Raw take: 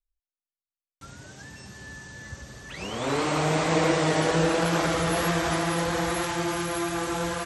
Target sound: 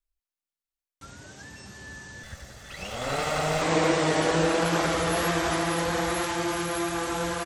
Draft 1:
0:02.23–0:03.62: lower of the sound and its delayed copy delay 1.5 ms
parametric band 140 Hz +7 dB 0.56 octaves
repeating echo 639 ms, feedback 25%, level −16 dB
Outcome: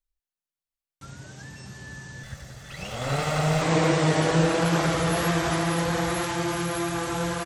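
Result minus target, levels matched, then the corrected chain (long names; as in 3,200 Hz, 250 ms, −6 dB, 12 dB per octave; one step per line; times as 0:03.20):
125 Hz band +6.0 dB
0:02.23–0:03.62: lower of the sound and its delayed copy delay 1.5 ms
parametric band 140 Hz −4.5 dB 0.56 octaves
repeating echo 639 ms, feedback 25%, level −16 dB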